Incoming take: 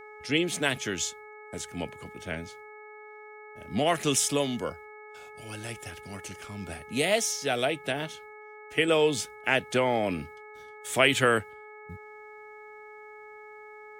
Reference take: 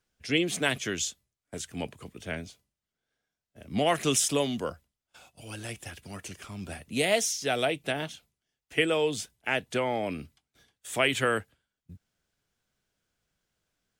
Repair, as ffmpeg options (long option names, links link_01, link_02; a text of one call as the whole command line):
ffmpeg -i in.wav -af "bandreject=frequency=424.1:width_type=h:width=4,bandreject=frequency=848.2:width_type=h:width=4,bandreject=frequency=1272.3:width_type=h:width=4,bandreject=frequency=1696.4:width_type=h:width=4,bandreject=frequency=2200:width=30,asetnsamples=nb_out_samples=441:pad=0,asendcmd='8.88 volume volume -3.5dB',volume=0dB" out.wav